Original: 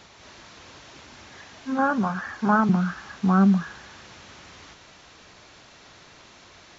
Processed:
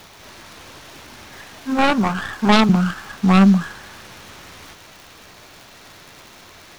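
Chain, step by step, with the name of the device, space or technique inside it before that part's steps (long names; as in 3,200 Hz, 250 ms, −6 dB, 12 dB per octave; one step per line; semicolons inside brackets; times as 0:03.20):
record under a worn stylus (stylus tracing distortion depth 0.39 ms; surface crackle 110 per second −38 dBFS; white noise bed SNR 37 dB)
level +5.5 dB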